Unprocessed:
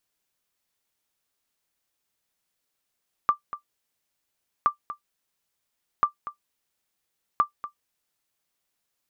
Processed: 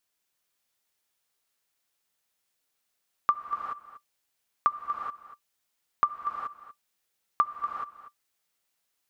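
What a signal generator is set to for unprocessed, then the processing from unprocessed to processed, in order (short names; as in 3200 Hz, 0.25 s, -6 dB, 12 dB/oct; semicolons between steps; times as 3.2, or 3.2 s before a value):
sonar ping 1180 Hz, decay 0.11 s, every 1.37 s, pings 4, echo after 0.24 s, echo -14 dB -10.5 dBFS
low shelf 470 Hz -5 dB; non-linear reverb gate 0.45 s rising, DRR 4 dB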